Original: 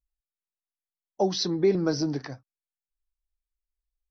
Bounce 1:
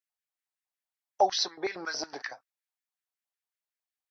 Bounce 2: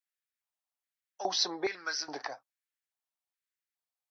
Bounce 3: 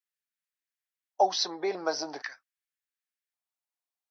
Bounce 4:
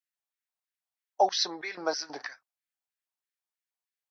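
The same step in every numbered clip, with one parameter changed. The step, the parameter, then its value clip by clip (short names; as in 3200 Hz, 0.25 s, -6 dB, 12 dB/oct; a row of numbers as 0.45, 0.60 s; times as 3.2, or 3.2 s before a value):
LFO high-pass, rate: 5.4, 1.2, 0.45, 3.1 Hz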